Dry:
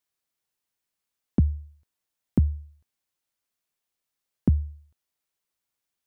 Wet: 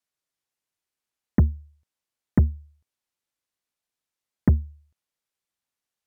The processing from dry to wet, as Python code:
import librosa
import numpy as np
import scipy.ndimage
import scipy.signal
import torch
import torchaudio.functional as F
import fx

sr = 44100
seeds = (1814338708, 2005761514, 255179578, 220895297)

y = np.repeat(x[::2], 2)[:len(x)]
y = fx.cheby_harmonics(y, sr, harmonics=(7,), levels_db=(-22,), full_scale_db=-11.0)
y = y * librosa.db_to_amplitude(2.5)